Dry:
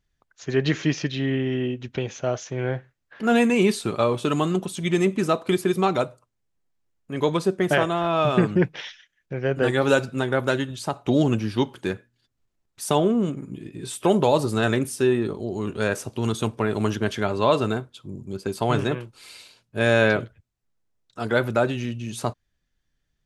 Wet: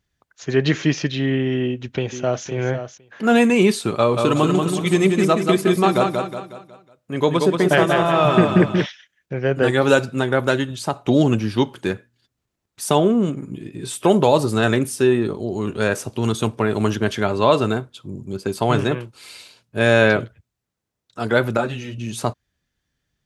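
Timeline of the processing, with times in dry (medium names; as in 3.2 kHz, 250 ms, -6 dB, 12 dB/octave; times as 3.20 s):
1.61–2.46 s: echo throw 510 ms, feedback 10%, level -10 dB
3.95–8.86 s: feedback delay 183 ms, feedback 43%, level -4.5 dB
21.57–21.98 s: three-phase chorus
whole clip: high-pass 55 Hz; trim +4 dB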